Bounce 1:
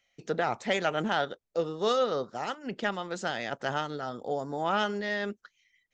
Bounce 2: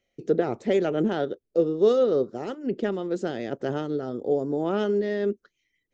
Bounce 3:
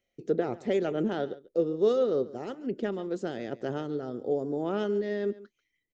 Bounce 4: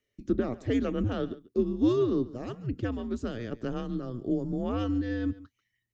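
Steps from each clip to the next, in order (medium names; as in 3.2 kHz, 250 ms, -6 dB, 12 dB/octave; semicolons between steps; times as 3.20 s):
FFT filter 190 Hz 0 dB, 380 Hz +8 dB, 860 Hz -12 dB; trim +5.5 dB
delay 140 ms -18.5 dB; trim -4.5 dB
frequency shift -120 Hz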